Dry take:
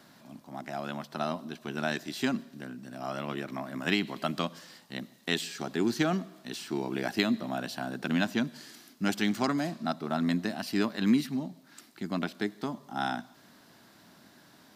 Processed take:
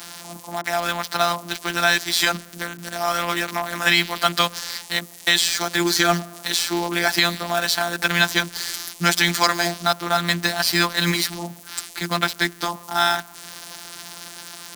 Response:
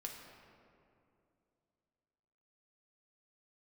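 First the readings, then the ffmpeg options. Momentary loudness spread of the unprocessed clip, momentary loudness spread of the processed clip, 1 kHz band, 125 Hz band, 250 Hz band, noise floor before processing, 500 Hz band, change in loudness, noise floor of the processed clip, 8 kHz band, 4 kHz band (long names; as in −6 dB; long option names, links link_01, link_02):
14 LU, 15 LU, +13.5 dB, +7.0 dB, +1.0 dB, −58 dBFS, +8.5 dB, +11.0 dB, −43 dBFS, +20.0 dB, +17.0 dB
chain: -filter_complex "[0:a]tiltshelf=frequency=640:gain=-9.5,bandreject=frequency=2800:width=6.7,asplit=2[link_01][link_02];[link_02]acompressor=threshold=-41dB:ratio=8,volume=1dB[link_03];[link_01][link_03]amix=inputs=2:normalize=0,afftfilt=real='hypot(re,im)*cos(PI*b)':imag='0':win_size=1024:overlap=0.75,acrossover=split=240|1500[link_04][link_05][link_06];[link_06]acrusher=bits=6:mix=0:aa=0.000001[link_07];[link_04][link_05][link_07]amix=inputs=3:normalize=0,alimiter=level_in=13dB:limit=-1dB:release=50:level=0:latency=1,volume=-1dB"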